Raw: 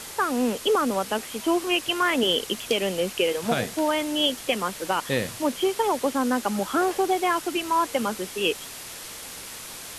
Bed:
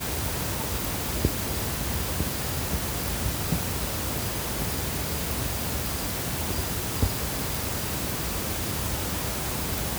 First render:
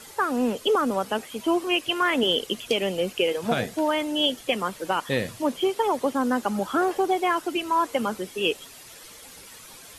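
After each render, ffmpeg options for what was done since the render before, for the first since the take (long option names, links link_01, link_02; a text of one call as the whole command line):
ffmpeg -i in.wav -af "afftdn=noise_reduction=10:noise_floor=-39" out.wav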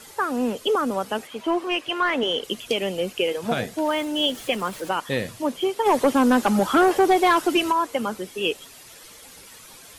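ffmpeg -i in.wav -filter_complex "[0:a]asettb=1/sr,asplit=3[link_01][link_02][link_03];[link_01]atrim=end=1.274[link_04];[link_02]atrim=start=1.27:end=2.44,asetpts=PTS-STARTPTS,afade=type=in:duration=0.004:curve=qsin,afade=type=out:start_time=1.166:duration=0.004:curve=qsin,asplit=2[link_05][link_06];[link_06]highpass=frequency=720:poles=1,volume=10dB,asoftclip=type=tanh:threshold=-11dB[link_07];[link_05][link_07]amix=inputs=2:normalize=0,lowpass=frequency=1700:poles=1,volume=-6dB[link_08];[link_03]atrim=start=2.436[link_09];[link_04][link_08]acrossfade=duration=0.004:curve1=hsin:curve2=qsin[link_10];[link_10][link_09]acrossfade=duration=0.004:curve1=qsin:curve2=hsin,asettb=1/sr,asplit=3[link_11][link_12][link_13];[link_11]atrim=end=3.854[link_14];[link_12]atrim=start=3.85:end=4.89,asetpts=PTS-STARTPTS,afade=type=in:duration=0.004:curve=qsin,afade=type=out:start_time=1.036:duration=0.004:curve=qsin,aeval=exprs='val(0)+0.5*0.0119*sgn(val(0))':channel_layout=same[link_15];[link_13]atrim=start=4.886[link_16];[link_14][link_15]acrossfade=duration=0.004:curve1=hsin:curve2=qsin[link_17];[link_17][link_16]acrossfade=duration=0.004:curve1=qsin:curve2=hsin,asplit=3[link_18][link_19][link_20];[link_18]afade=type=out:start_time=5.85:duration=0.02[link_21];[link_19]aeval=exprs='0.266*sin(PI/2*1.58*val(0)/0.266)':channel_layout=same,afade=type=in:start_time=5.85:duration=0.02,afade=type=out:start_time=7.71:duration=0.02[link_22];[link_20]afade=type=in:start_time=7.71:duration=0.02[link_23];[link_21][link_22][link_23]amix=inputs=3:normalize=0" out.wav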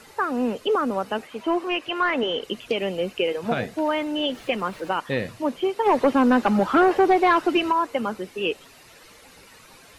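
ffmpeg -i in.wav -filter_complex "[0:a]acrossover=split=4300[link_01][link_02];[link_02]acompressor=threshold=-55dB:ratio=4:attack=1:release=60[link_03];[link_01][link_03]amix=inputs=2:normalize=0,bandreject=frequency=3300:width=11" out.wav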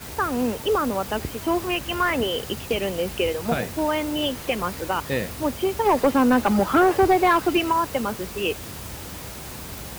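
ffmpeg -i in.wav -i bed.wav -filter_complex "[1:a]volume=-7dB[link_01];[0:a][link_01]amix=inputs=2:normalize=0" out.wav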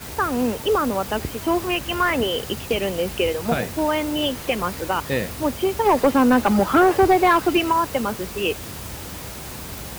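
ffmpeg -i in.wav -af "volume=2dB" out.wav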